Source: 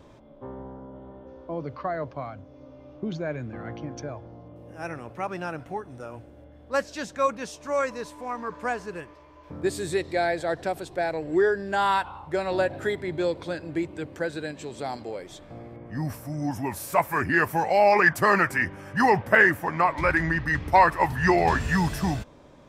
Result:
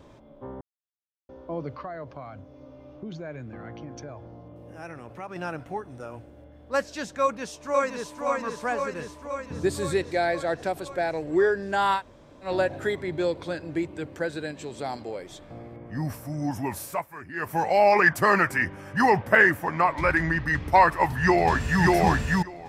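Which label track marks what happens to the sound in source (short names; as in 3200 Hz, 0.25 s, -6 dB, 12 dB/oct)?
0.610000	1.290000	mute
1.820000	5.360000	compressor 2:1, threshold -38 dBFS
7.220000	8.230000	echo throw 0.52 s, feedback 70%, level -4 dB
8.990000	10.020000	bell 79 Hz +5.5 dB 2.7 oct
11.980000	12.460000	room tone, crossfade 0.10 s
16.790000	17.610000	dip -15.5 dB, fades 0.27 s
21.190000	21.830000	echo throw 0.59 s, feedback 10%, level -0.5 dB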